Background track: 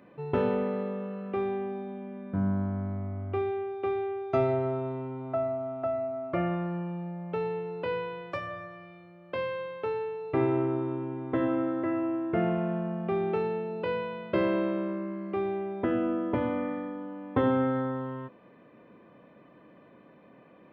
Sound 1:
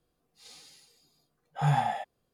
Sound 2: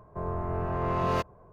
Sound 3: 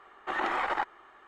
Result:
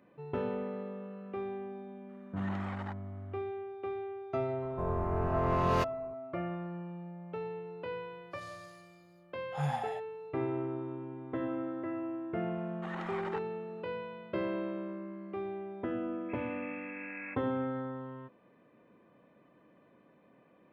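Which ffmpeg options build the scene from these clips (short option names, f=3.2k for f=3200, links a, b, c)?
-filter_complex "[3:a]asplit=2[a][b];[2:a]asplit=2[c][d];[0:a]volume=-8dB[e];[b]asuperstop=centerf=680:order=4:qfactor=6[f];[d]lowpass=f=2.3k:t=q:w=0.5098,lowpass=f=2.3k:t=q:w=0.6013,lowpass=f=2.3k:t=q:w=0.9,lowpass=f=2.3k:t=q:w=2.563,afreqshift=-2700[g];[a]atrim=end=1.27,asetpts=PTS-STARTPTS,volume=-14.5dB,afade=t=in:d=0.004:c=hsin,afade=t=out:st=1.266:d=0.004:c=hsin,adelay=2090[h];[c]atrim=end=1.52,asetpts=PTS-STARTPTS,volume=-1dB,afade=t=in:d=0.004:c=hsin,afade=t=out:st=1.516:d=0.004:c=hsin,adelay=4620[i];[1:a]atrim=end=2.33,asetpts=PTS-STARTPTS,volume=-8dB,afade=t=in:d=0.004:c=hsin,afade=t=out:st=2.326:d=0.004:c=hsin,adelay=7960[j];[f]atrim=end=1.27,asetpts=PTS-STARTPTS,volume=-12dB,afade=t=in:d=0.004:c=hsin,afade=t=out:st=1.266:d=0.004:c=hsin,adelay=12550[k];[g]atrim=end=1.52,asetpts=PTS-STARTPTS,volume=-17.5dB,afade=t=in:d=0.004:c=hsin,afade=t=out:st=1.516:d=0.004:c=hsin,adelay=16130[l];[e][h][i][j][k][l]amix=inputs=6:normalize=0"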